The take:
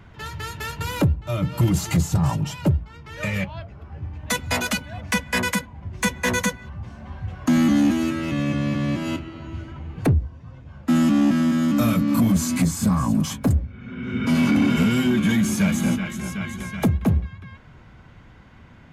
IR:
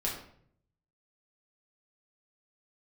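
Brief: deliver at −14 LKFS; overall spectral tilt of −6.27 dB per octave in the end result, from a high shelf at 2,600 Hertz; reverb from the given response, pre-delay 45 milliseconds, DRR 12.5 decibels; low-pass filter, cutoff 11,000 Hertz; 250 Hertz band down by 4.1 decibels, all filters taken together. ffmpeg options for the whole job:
-filter_complex "[0:a]lowpass=11000,equalizer=frequency=250:width_type=o:gain=-5,highshelf=frequency=2600:gain=-7,asplit=2[link_01][link_02];[1:a]atrim=start_sample=2205,adelay=45[link_03];[link_02][link_03]afir=irnorm=-1:irlink=0,volume=-17.5dB[link_04];[link_01][link_04]amix=inputs=2:normalize=0,volume=11dB"

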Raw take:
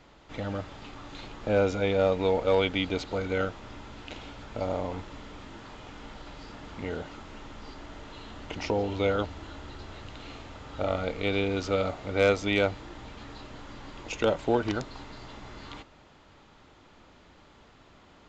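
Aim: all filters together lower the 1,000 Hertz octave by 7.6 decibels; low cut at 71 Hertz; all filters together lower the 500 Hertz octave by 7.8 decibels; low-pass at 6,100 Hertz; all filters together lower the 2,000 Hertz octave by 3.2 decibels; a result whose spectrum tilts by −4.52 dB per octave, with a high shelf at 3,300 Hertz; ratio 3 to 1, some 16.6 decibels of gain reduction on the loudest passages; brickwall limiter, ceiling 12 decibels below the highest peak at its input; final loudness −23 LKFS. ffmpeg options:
ffmpeg -i in.wav -af "highpass=71,lowpass=6100,equalizer=frequency=500:width_type=o:gain=-7,equalizer=frequency=1000:width_type=o:gain=-8,equalizer=frequency=2000:width_type=o:gain=-4,highshelf=frequency=3300:gain=7,acompressor=threshold=-48dB:ratio=3,volume=29dB,alimiter=limit=-12.5dB:level=0:latency=1" out.wav

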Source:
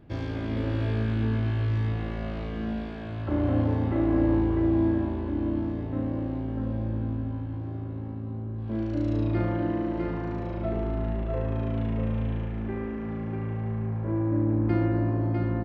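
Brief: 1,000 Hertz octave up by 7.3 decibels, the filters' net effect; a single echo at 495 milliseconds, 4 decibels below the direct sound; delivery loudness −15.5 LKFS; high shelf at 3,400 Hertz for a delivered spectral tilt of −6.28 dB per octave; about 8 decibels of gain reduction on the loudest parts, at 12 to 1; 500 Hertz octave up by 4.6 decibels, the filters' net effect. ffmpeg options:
ffmpeg -i in.wav -af "equalizer=frequency=500:width_type=o:gain=4.5,equalizer=frequency=1000:width_type=o:gain=7.5,highshelf=frequency=3400:gain=5.5,acompressor=threshold=-25dB:ratio=12,aecho=1:1:495:0.631,volume=14.5dB" out.wav

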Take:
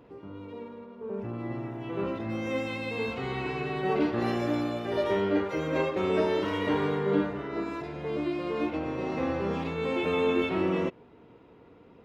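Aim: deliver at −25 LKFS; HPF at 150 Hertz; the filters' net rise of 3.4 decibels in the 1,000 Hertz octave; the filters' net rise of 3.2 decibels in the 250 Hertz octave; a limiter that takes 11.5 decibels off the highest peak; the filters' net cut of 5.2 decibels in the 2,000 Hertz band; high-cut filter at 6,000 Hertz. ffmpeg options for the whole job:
ffmpeg -i in.wav -af "highpass=150,lowpass=6000,equalizer=frequency=250:width_type=o:gain=4.5,equalizer=frequency=1000:width_type=o:gain=6,equalizer=frequency=2000:width_type=o:gain=-8.5,volume=7dB,alimiter=limit=-16dB:level=0:latency=1" out.wav

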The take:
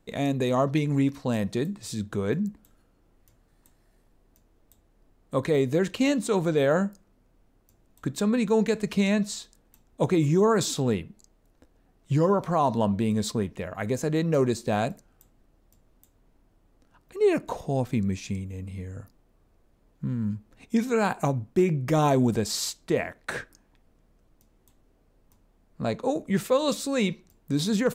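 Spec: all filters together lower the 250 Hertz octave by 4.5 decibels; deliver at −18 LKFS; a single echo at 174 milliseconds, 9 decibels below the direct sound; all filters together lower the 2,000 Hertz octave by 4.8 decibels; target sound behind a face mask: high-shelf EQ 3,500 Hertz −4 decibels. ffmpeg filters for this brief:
ffmpeg -i in.wav -af "equalizer=frequency=250:width_type=o:gain=-6,equalizer=frequency=2000:width_type=o:gain=-5,highshelf=frequency=3500:gain=-4,aecho=1:1:174:0.355,volume=10.5dB" out.wav

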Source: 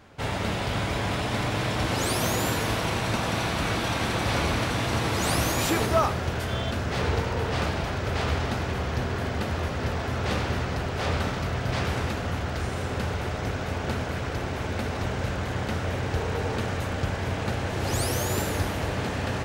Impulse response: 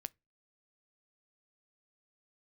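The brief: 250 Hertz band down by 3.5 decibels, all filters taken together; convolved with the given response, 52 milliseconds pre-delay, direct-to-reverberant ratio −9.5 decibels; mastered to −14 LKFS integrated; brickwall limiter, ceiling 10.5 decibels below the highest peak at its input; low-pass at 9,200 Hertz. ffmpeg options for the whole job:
-filter_complex "[0:a]lowpass=9200,equalizer=frequency=250:width_type=o:gain=-5,alimiter=limit=-20.5dB:level=0:latency=1,asplit=2[link_01][link_02];[1:a]atrim=start_sample=2205,adelay=52[link_03];[link_02][link_03]afir=irnorm=-1:irlink=0,volume=13dB[link_04];[link_01][link_04]amix=inputs=2:normalize=0,volume=6.5dB"

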